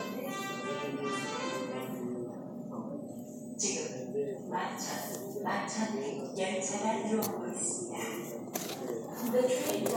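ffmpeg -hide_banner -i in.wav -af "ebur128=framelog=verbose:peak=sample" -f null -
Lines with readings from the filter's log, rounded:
Integrated loudness:
  I:         -35.3 LUFS
  Threshold: -45.3 LUFS
Loudness range:
  LRA:         3.8 LU
  Threshold: -55.6 LUFS
  LRA low:   -37.5 LUFS
  LRA high:  -33.8 LUFS
Sample peak:
  Peak:      -14.5 dBFS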